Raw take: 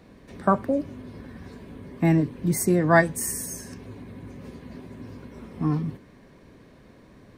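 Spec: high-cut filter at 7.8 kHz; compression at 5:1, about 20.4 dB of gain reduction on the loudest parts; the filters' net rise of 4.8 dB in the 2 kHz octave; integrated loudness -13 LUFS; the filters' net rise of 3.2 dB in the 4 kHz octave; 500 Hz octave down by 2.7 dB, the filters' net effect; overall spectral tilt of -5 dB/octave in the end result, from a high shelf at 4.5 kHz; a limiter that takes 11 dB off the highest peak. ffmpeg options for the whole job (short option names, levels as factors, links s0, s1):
-af "lowpass=7800,equalizer=f=500:t=o:g=-4.5,equalizer=f=2000:t=o:g=5.5,equalizer=f=4000:t=o:g=7,highshelf=f=4500:g=-5,acompressor=threshold=0.0178:ratio=5,volume=28.2,alimiter=limit=0.794:level=0:latency=1"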